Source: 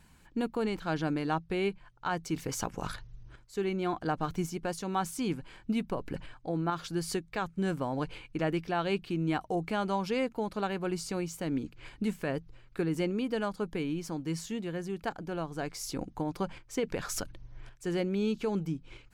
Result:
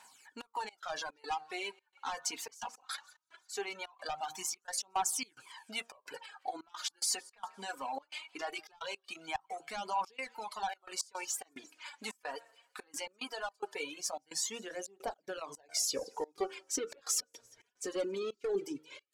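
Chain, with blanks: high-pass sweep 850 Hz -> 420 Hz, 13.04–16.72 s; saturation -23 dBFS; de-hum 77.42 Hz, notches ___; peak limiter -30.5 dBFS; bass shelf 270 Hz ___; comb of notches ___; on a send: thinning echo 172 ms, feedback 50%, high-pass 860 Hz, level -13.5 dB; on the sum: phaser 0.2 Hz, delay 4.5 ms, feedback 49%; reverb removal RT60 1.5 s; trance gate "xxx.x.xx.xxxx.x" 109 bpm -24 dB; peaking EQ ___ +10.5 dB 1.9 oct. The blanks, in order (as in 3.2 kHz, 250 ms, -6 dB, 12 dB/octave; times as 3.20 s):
24, +7 dB, 170 Hz, 6.8 kHz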